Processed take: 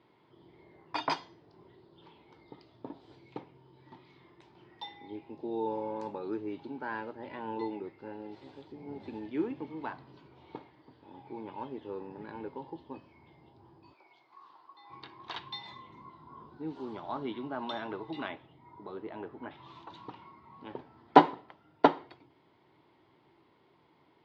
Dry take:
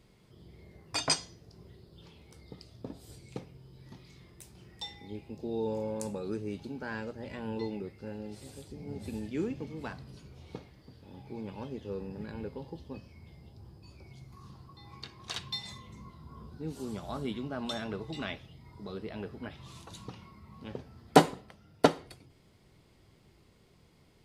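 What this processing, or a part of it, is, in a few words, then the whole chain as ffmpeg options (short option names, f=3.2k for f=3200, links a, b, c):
kitchen radio: -filter_complex "[0:a]asettb=1/sr,asplit=3[a][b][c];[a]atrim=end=13.934[d];[b]atrim=start=13.93:end=14.9,asetpts=PTS-STARTPTS,afade=t=in:d=0.004:c=qsin,afade=t=out:st=0.966:d=0.004:c=qsin,highpass=640[e];[c]atrim=start=14.896[f];[d][e]acrossfade=d=0.004:c1=hsin:c2=qsin[g];[g][f]acrossfade=d=0.004:c1=qsin:c2=hsin,asettb=1/sr,asplit=3[h][i][j];[h]atrim=end=18.284[k];[i]atrim=start=18.28:end=19.51,asetpts=PTS-STARTPTS,afade=t=in:d=0.004:c=qsin,afade=t=out:st=1.226:d=0.004:c=qsin,aemphasis=mode=reproduction:type=75kf[l];[j]atrim=start=19.506[m];[k][l]acrossfade=d=0.004:c1=hsin:c2=qsin[n];[n][m]acrossfade=d=0.004:c1=qsin:c2=hsin,highpass=200,equalizer=f=200:t=q:w=4:g=-9,equalizer=f=320:t=q:w=4:g=5,equalizer=f=500:t=q:w=4:g=-4,equalizer=f=930:t=q:w=4:g=10,equalizer=f=2.6k:t=q:w=4:g=-4,lowpass=f=3.5k:w=0.5412,lowpass=f=3.5k:w=1.3066"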